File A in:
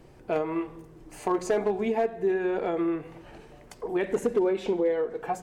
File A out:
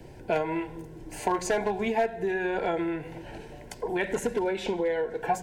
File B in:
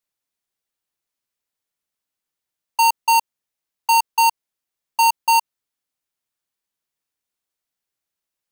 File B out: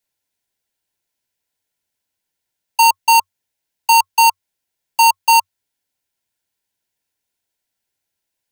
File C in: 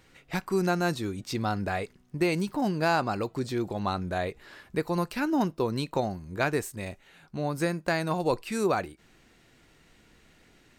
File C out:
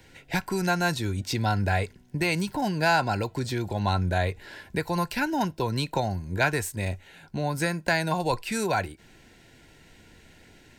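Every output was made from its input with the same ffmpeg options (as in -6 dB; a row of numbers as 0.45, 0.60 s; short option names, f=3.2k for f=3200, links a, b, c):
-filter_complex "[0:a]equalizer=f=93:w=4.9:g=7,acrossover=split=160|690|3400[a][b][c][d];[b]acompressor=threshold=-37dB:ratio=6[e];[a][e][c][d]amix=inputs=4:normalize=0,asuperstop=centerf=1200:order=20:qfactor=5,volume=5.5dB"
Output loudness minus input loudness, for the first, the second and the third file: -1.5, +4.5, +2.0 LU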